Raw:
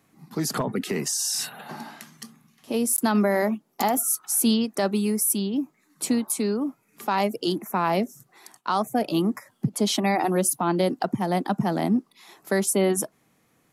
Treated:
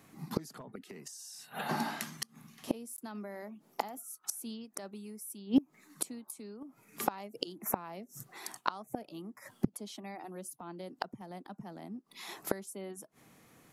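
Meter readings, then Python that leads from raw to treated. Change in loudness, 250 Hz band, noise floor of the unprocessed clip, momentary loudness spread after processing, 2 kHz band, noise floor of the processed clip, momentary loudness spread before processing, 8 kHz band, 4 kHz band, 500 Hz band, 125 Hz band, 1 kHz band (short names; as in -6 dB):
-15.0 dB, -14.0 dB, -66 dBFS, 12 LU, -12.5 dB, -69 dBFS, 12 LU, -16.5 dB, -14.0 dB, -17.0 dB, -16.0 dB, -13.5 dB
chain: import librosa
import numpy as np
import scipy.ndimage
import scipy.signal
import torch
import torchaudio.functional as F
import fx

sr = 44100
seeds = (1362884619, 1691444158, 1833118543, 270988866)

y = fx.gate_flip(x, sr, shuts_db=-19.0, range_db=-26)
y = y * 10.0 ** (4.0 / 20.0)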